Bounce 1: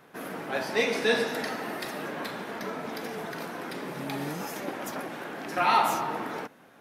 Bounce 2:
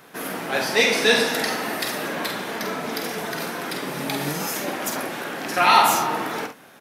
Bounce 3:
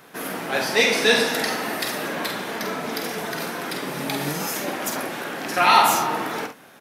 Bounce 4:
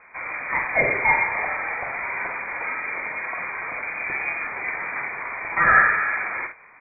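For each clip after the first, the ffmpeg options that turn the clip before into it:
ffmpeg -i in.wav -filter_complex "[0:a]highshelf=frequency=2600:gain=8.5,asplit=2[link_01][link_02];[link_02]aecho=0:1:48|70:0.447|0.178[link_03];[link_01][link_03]amix=inputs=2:normalize=0,volume=5dB" out.wav
ffmpeg -i in.wav -af anull out.wav
ffmpeg -i in.wav -af "lowpass=frequency=2200:width_type=q:width=0.5098,lowpass=frequency=2200:width_type=q:width=0.6013,lowpass=frequency=2200:width_type=q:width=0.9,lowpass=frequency=2200:width_type=q:width=2.563,afreqshift=-2600" out.wav

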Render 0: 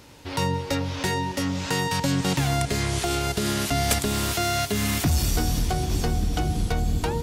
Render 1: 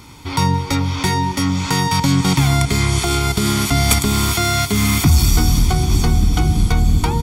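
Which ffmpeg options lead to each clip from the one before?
ffmpeg -i in.wav -af "aecho=1:1:0.9:0.68,volume=6dB" out.wav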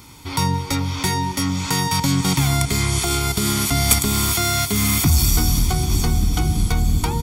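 ffmpeg -i in.wav -af "crystalizer=i=1:c=0,volume=-4dB" out.wav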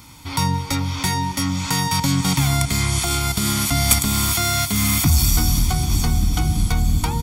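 ffmpeg -i in.wav -af "equalizer=frequency=400:width_type=o:width=0.25:gain=-14" out.wav

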